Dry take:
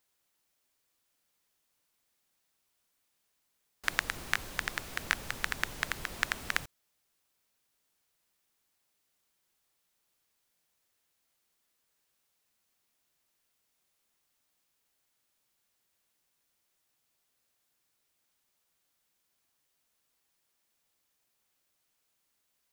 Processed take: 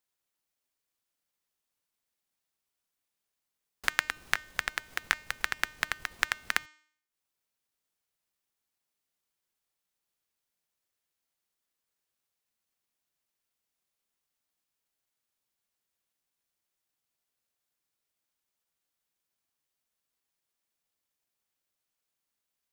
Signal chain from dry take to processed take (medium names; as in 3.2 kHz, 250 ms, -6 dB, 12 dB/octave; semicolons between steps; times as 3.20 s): transient shaper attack +11 dB, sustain -8 dB; de-hum 305.3 Hz, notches 27; trim -8 dB